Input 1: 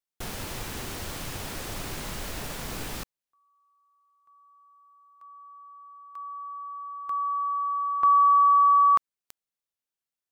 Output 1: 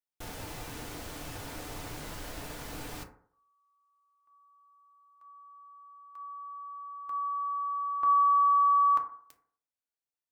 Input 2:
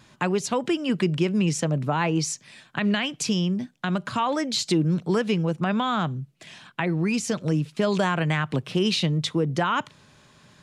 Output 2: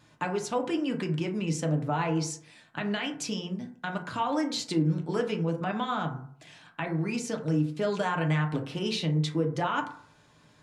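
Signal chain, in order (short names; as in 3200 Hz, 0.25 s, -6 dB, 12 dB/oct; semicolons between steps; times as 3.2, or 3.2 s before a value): bell 680 Hz +2 dB; FDN reverb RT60 0.57 s, low-frequency decay 0.85×, high-frequency decay 0.35×, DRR 2 dB; gain -8 dB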